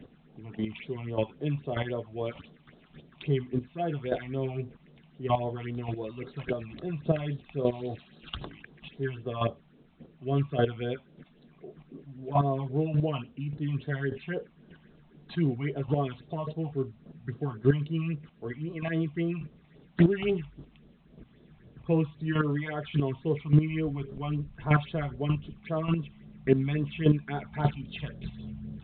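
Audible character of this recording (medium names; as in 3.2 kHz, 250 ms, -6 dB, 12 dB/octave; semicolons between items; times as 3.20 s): phasing stages 6, 3.7 Hz, lowest notch 400–2400 Hz; chopped level 1.7 Hz, depth 65%, duty 10%; A-law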